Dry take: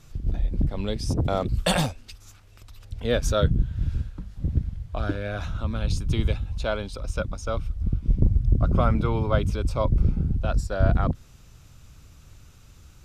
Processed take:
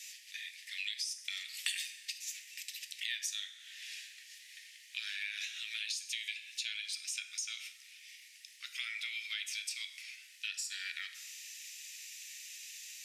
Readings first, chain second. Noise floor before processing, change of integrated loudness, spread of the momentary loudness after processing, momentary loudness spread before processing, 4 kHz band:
−51 dBFS, −13.5 dB, 12 LU, 9 LU, −1.0 dB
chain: Chebyshev high-pass with heavy ripple 1,800 Hz, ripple 3 dB
dense smooth reverb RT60 0.69 s, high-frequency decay 0.75×, DRR 7.5 dB
downward compressor 6 to 1, threshold −50 dBFS, peak gain reduction 23.5 dB
level +13.5 dB

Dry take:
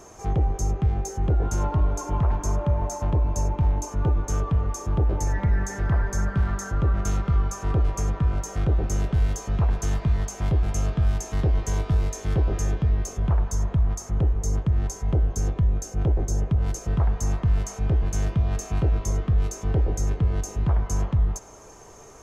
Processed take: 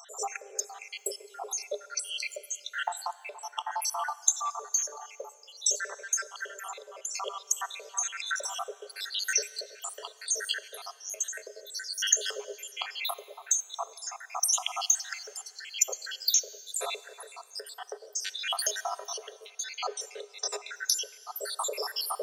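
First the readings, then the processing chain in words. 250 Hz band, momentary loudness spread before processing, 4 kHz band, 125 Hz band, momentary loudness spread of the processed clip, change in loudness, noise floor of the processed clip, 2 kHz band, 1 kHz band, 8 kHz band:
below −30 dB, 2 LU, +13.5 dB, below −40 dB, 14 LU, −6.5 dB, −55 dBFS, +3.5 dB, −2.0 dB, can't be measured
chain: time-frequency cells dropped at random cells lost 84%
camcorder AGC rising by 53 dB per second
high shelf with overshoot 2,700 Hz +11.5 dB, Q 1.5
in parallel at +3 dB: downward compressor, threshold −29 dBFS, peak gain reduction 18.5 dB
on the sum: Chebyshev high-pass with heavy ripple 400 Hz, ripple 6 dB
dense smooth reverb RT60 2.5 s, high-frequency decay 0.95×, DRR 17 dB
level −4.5 dB

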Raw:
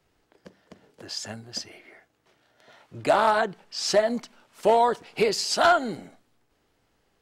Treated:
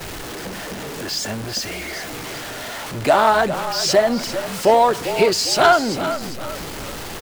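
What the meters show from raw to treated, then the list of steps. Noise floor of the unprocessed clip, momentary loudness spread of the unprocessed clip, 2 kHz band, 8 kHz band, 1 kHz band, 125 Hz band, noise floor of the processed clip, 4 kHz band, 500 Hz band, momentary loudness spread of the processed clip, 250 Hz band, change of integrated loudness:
−70 dBFS, 15 LU, +7.0 dB, +9.0 dB, +6.5 dB, +11.5 dB, −31 dBFS, +8.5 dB, +6.5 dB, 15 LU, +8.5 dB, +5.0 dB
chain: converter with a step at zero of −30.5 dBFS
echo with shifted repeats 397 ms, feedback 41%, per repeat −44 Hz, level −11 dB
noise gate −42 dBFS, range −10 dB
level +5 dB

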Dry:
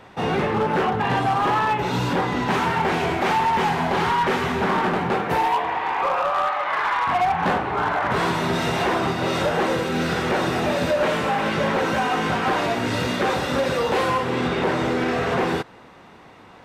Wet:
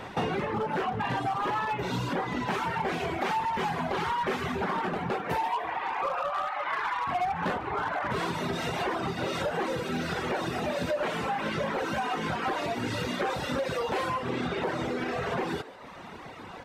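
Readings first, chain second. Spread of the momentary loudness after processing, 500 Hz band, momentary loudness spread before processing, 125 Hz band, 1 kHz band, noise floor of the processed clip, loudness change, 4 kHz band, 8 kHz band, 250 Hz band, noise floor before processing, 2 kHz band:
2 LU, −8.5 dB, 3 LU, −8.5 dB, −8.5 dB, −43 dBFS, −8.5 dB, −8.5 dB, −8.0 dB, −8.5 dB, −46 dBFS, −8.5 dB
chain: downward compressor 4 to 1, threshold −34 dBFS, peak gain reduction 13.5 dB
reverb reduction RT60 1.2 s
on a send: echo with shifted repeats 147 ms, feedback 55%, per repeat +110 Hz, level −17 dB
on the sum: level +6 dB

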